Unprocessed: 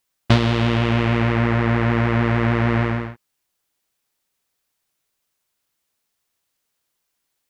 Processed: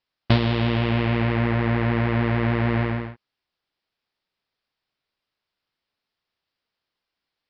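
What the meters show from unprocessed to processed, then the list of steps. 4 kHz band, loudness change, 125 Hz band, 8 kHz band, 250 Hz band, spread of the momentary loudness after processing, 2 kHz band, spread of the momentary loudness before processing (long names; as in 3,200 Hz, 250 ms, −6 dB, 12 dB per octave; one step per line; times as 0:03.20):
−3.0 dB, −3.0 dB, −3.0 dB, can't be measured, −3.0 dB, 3 LU, −4.0 dB, 3 LU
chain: Butterworth low-pass 5,200 Hz 72 dB per octave
dynamic equaliser 1,300 Hz, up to −4 dB, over −42 dBFS, Q 3.2
level −3 dB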